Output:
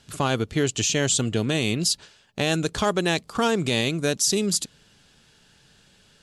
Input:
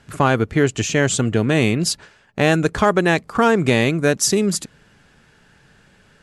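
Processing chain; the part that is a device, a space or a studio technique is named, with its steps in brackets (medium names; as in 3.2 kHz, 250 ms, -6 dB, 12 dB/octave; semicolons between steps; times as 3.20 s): over-bright horn tweeter (resonant high shelf 2.6 kHz +8 dB, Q 1.5; peak limiter -6.5 dBFS, peak gain reduction 7.5 dB); trim -6 dB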